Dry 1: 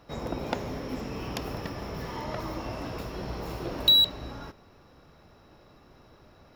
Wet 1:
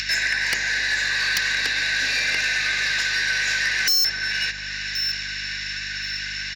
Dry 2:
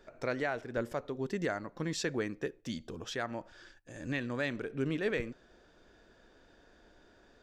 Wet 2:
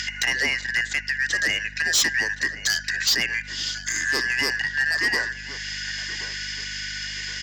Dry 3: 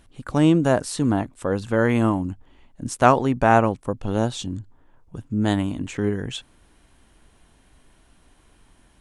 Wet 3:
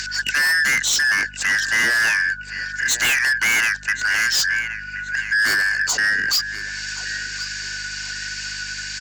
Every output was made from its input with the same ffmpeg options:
-filter_complex "[0:a]afftfilt=real='real(if(lt(b,272),68*(eq(floor(b/68),0)*1+eq(floor(b/68),1)*0+eq(floor(b/68),2)*3+eq(floor(b/68),3)*2)+mod(b,68),b),0)':imag='imag(if(lt(b,272),68*(eq(floor(b/68),0)*1+eq(floor(b/68),1)*0+eq(floor(b/68),2)*3+eq(floor(b/68),3)*2)+mod(b,68),b),0)':win_size=2048:overlap=0.75,highpass=200,aresample=16000,aresample=44100,acrossover=split=260|3000[a][b][c];[a]acompressor=threshold=-30dB:ratio=2[d];[d][b][c]amix=inputs=3:normalize=0,acrossover=split=1500[e][f];[e]alimiter=limit=-23.5dB:level=0:latency=1:release=31[g];[f]acompressor=mode=upward:threshold=-26dB:ratio=2.5[h];[g][h]amix=inputs=2:normalize=0,aeval=exprs='val(0)+0.00282*(sin(2*PI*50*n/s)+sin(2*PI*2*50*n/s)/2+sin(2*PI*3*50*n/s)/3+sin(2*PI*4*50*n/s)/4+sin(2*PI*5*50*n/s)/5)':c=same,adynamicequalizer=threshold=0.00251:dfrequency=310:dqfactor=1.9:tfrequency=310:tqfactor=1.9:attack=5:release=100:ratio=0.375:range=2:mode=cutabove:tftype=bell,aexciter=amount=4.4:drive=3.3:freq=3.3k,asoftclip=type=tanh:threshold=-13.5dB,asplit=2[i][j];[j]adelay=1073,lowpass=f=4.8k:p=1,volume=-15dB,asplit=2[k][l];[l]adelay=1073,lowpass=f=4.8k:p=1,volume=0.4,asplit=2[m][n];[n]adelay=1073,lowpass=f=4.8k:p=1,volume=0.4,asplit=2[o][p];[p]adelay=1073,lowpass=f=4.8k:p=1,volume=0.4[q];[k][m][o][q]amix=inputs=4:normalize=0[r];[i][r]amix=inputs=2:normalize=0,aeval=exprs='0.251*(cos(1*acos(clip(val(0)/0.251,-1,1)))-cos(1*PI/2))+0.0891*(cos(5*acos(clip(val(0)/0.251,-1,1)))-cos(5*PI/2))':c=same"

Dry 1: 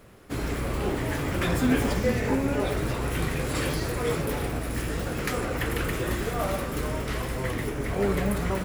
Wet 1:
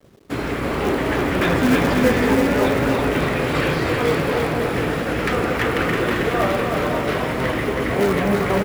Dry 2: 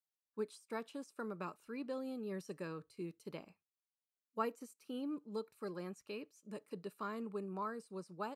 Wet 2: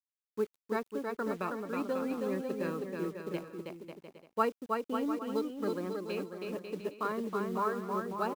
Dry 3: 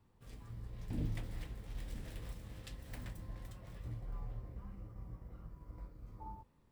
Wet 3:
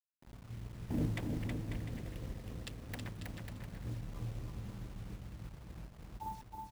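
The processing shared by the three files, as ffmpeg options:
-filter_complex "[0:a]anlmdn=0.0158,highpass=f=60:p=1,lowshelf=f=110:g=-9.5,acrossover=split=850|4100[a][b][c];[c]acompressor=threshold=-58dB:ratio=5[d];[a][b][d]amix=inputs=3:normalize=0,acrusher=bits=10:mix=0:aa=0.000001,asplit=2[e][f];[f]aeval=exprs='(mod(10*val(0)+1,2)-1)/10':c=same,volume=-12dB[g];[e][g]amix=inputs=2:normalize=0,acrusher=bits=7:mode=log:mix=0:aa=0.000001,aecho=1:1:320|544|700.8|810.6|887.4:0.631|0.398|0.251|0.158|0.1,volume=6.5dB"

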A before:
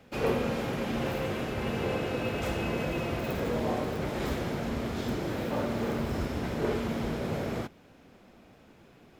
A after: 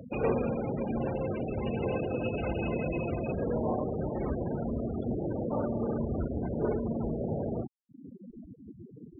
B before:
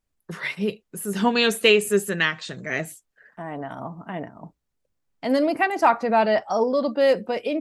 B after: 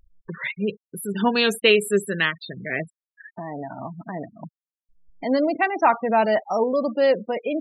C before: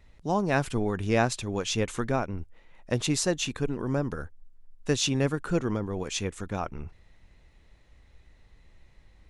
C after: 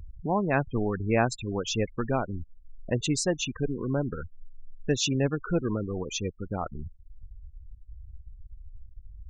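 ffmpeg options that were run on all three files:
-af "acompressor=mode=upward:threshold=-29dB:ratio=2.5,afftfilt=real='re*gte(hypot(re,im),0.0398)':imag='im*gte(hypot(re,im),0.0398)':win_size=1024:overlap=0.75"

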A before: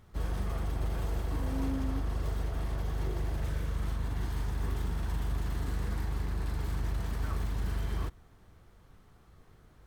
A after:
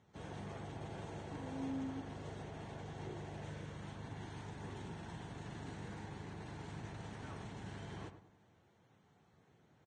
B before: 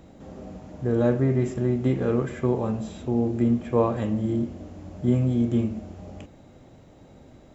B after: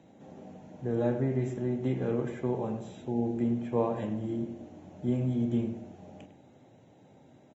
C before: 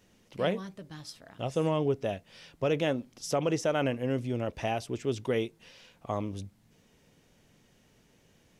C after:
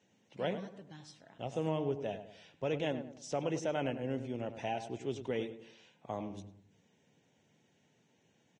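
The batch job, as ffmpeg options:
-filter_complex "[0:a]highpass=f=110:w=0.5412,highpass=f=110:w=1.3066,equalizer=f=830:t=q:w=4:g=4,equalizer=f=1.2k:t=q:w=4:g=-7,equalizer=f=4.9k:t=q:w=4:g=-7,lowpass=f=7.5k:w=0.5412,lowpass=f=7.5k:w=1.3066,asplit=2[a][b];[b]adelay=101,lowpass=f=1.7k:p=1,volume=-9.5dB,asplit=2[c][d];[d]adelay=101,lowpass=f=1.7k:p=1,volume=0.4,asplit=2[e][f];[f]adelay=101,lowpass=f=1.7k:p=1,volume=0.4,asplit=2[g][h];[h]adelay=101,lowpass=f=1.7k:p=1,volume=0.4[i];[a][c][e][g][i]amix=inputs=5:normalize=0,volume=-7dB" -ar 22050 -c:a libvorbis -b:a 32k

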